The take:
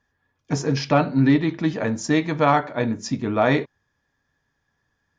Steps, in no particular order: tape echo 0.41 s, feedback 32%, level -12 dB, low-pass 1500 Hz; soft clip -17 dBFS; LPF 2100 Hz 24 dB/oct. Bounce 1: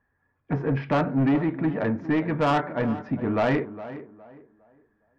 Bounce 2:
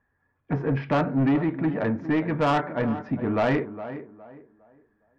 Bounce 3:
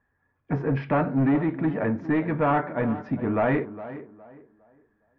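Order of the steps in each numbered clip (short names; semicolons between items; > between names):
LPF > soft clip > tape echo; LPF > tape echo > soft clip; soft clip > LPF > tape echo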